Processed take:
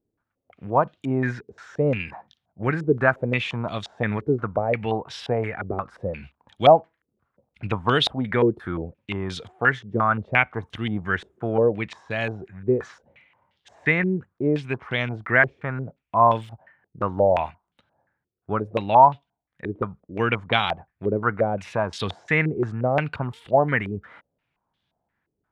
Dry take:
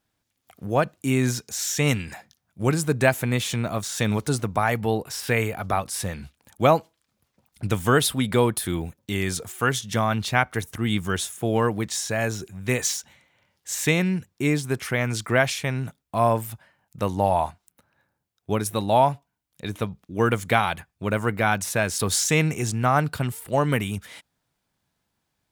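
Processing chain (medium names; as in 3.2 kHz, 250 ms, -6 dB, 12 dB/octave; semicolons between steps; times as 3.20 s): step-sequenced low-pass 5.7 Hz 400–3400 Hz; trim -3 dB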